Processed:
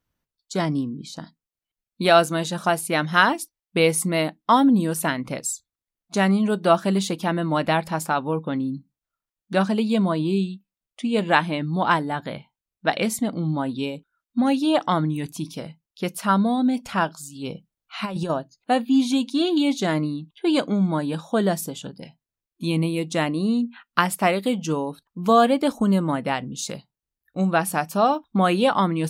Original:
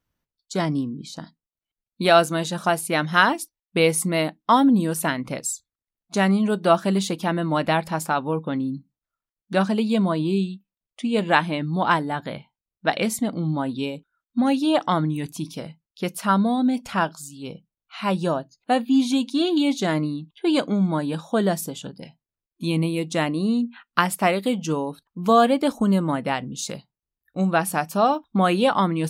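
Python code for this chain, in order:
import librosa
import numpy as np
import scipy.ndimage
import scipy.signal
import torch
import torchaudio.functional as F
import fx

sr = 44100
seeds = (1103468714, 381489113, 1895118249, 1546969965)

y = fx.over_compress(x, sr, threshold_db=-25.0, ratio=-0.5, at=(17.35, 18.3))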